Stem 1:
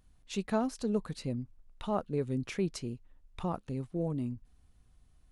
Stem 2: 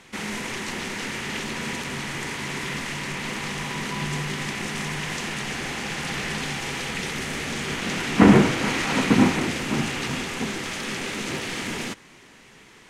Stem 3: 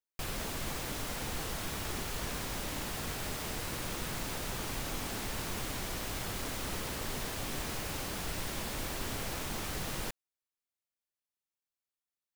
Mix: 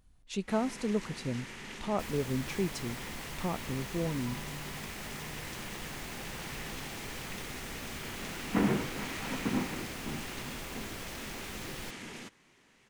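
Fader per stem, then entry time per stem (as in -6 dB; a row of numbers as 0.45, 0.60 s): 0.0, -14.5, -6.5 dB; 0.00, 0.35, 1.80 s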